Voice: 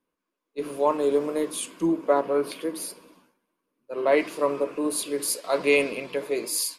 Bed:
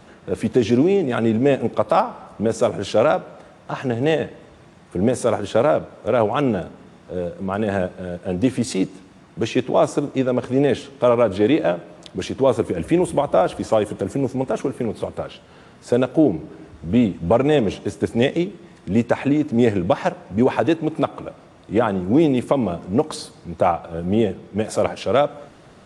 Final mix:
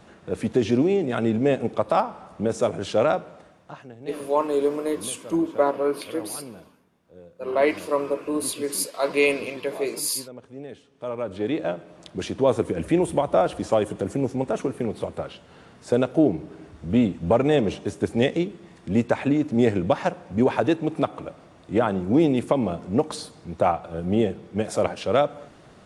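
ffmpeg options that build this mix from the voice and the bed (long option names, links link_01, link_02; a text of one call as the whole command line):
ffmpeg -i stem1.wav -i stem2.wav -filter_complex "[0:a]adelay=3500,volume=0.5dB[link_01];[1:a]volume=14dB,afade=type=out:start_time=3.28:duration=0.6:silence=0.141254,afade=type=in:start_time=10.89:duration=1.42:silence=0.125893[link_02];[link_01][link_02]amix=inputs=2:normalize=0" out.wav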